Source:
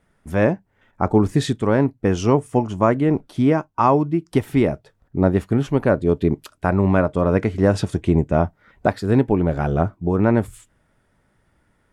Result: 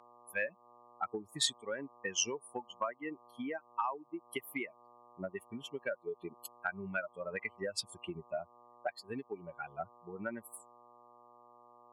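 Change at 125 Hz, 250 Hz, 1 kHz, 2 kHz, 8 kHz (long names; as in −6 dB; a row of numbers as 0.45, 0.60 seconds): −34.5 dB, −27.0 dB, −18.0 dB, −10.0 dB, can't be measured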